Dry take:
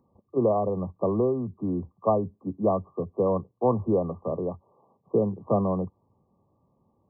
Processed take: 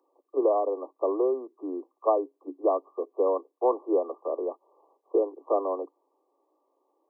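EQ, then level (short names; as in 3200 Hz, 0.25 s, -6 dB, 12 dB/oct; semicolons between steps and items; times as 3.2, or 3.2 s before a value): steep high-pass 290 Hz 96 dB/oct; 0.0 dB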